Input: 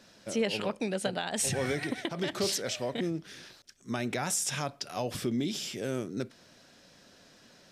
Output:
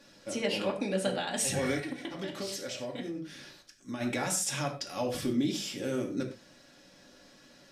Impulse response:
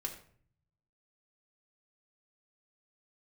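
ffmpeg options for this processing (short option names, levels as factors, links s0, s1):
-filter_complex "[1:a]atrim=start_sample=2205,afade=t=out:st=0.17:d=0.01,atrim=end_sample=7938,asetrate=40572,aresample=44100[s0];[0:a][s0]afir=irnorm=-1:irlink=0,asplit=3[s1][s2][s3];[s1]afade=t=out:st=1.79:d=0.02[s4];[s2]acompressor=threshold=0.0158:ratio=3,afade=t=in:st=1.79:d=0.02,afade=t=out:st=4:d=0.02[s5];[s3]afade=t=in:st=4:d=0.02[s6];[s4][s5][s6]amix=inputs=3:normalize=0"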